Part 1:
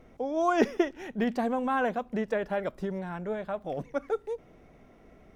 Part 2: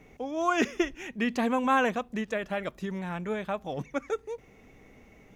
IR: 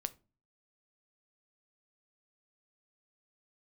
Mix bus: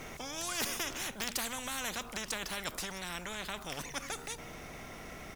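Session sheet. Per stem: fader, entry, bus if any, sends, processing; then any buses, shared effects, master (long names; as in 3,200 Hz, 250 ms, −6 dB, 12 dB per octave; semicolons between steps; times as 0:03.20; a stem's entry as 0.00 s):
−3.0 dB, 0.00 s, no send, parametric band 410 Hz −11 dB 1.9 octaves
−11.0 dB, 1.6 ms, polarity flipped, no send, hum removal 78.25 Hz, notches 19; level that may fall only so fast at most 64 dB per second; automatic ducking −16 dB, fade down 1.85 s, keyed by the first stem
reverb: not used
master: bass and treble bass +6 dB, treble +8 dB; every bin compressed towards the loudest bin 4 to 1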